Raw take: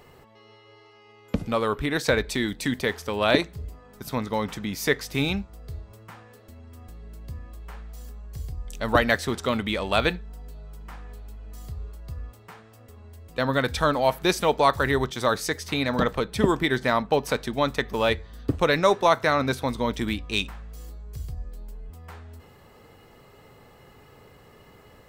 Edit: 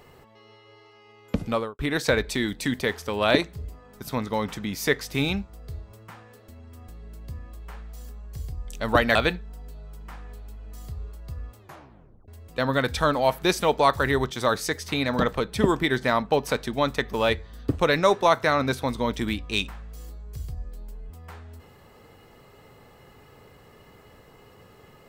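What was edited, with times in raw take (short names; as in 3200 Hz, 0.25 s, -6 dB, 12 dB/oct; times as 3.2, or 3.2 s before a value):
1.52–1.79 studio fade out
9.15–9.95 cut
12.39 tape stop 0.69 s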